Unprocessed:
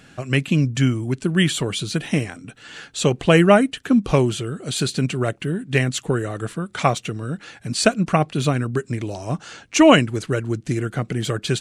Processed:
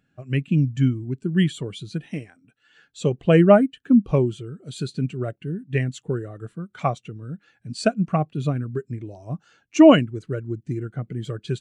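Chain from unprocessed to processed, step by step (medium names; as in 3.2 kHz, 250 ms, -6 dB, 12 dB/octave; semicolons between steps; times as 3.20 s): 2.08–2.77 s: bass shelf 310 Hz -6.5 dB; spectral contrast expander 1.5:1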